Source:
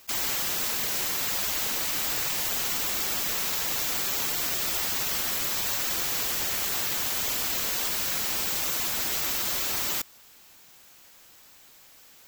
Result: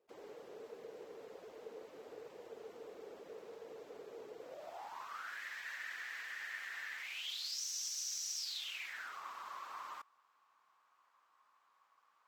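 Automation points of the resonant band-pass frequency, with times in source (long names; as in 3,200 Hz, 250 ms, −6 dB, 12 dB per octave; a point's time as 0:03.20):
resonant band-pass, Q 7.6
0:04.39 450 Hz
0:05.43 1,800 Hz
0:06.95 1,800 Hz
0:07.62 5,800 Hz
0:08.36 5,800 Hz
0:09.19 1,100 Hz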